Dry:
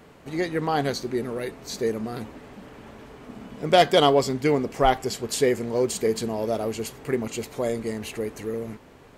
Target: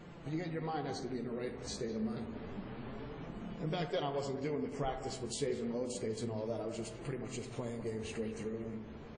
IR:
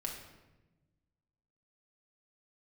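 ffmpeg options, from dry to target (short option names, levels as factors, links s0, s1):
-filter_complex "[0:a]lowshelf=f=280:g=7.5,acompressor=threshold=0.0141:ratio=2.5,flanger=delay=5.7:depth=8.6:regen=24:speed=0.29:shape=sinusoidal,asplit=2[s0][s1];[s1]adelay=200,highpass=300,lowpass=3400,asoftclip=type=hard:threshold=0.0224,volume=0.316[s2];[s0][s2]amix=inputs=2:normalize=0,asplit=2[s3][s4];[1:a]atrim=start_sample=2205,lowpass=2000,adelay=73[s5];[s4][s5]afir=irnorm=-1:irlink=0,volume=0.447[s6];[s3][s6]amix=inputs=2:normalize=0,volume=0.891" -ar 22050 -c:a wmav2 -b:a 32k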